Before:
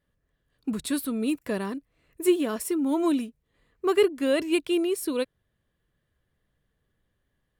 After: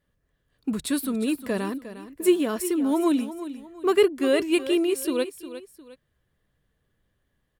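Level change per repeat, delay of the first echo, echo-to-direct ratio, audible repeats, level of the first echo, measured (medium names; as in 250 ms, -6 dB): -9.0 dB, 356 ms, -12.5 dB, 2, -13.0 dB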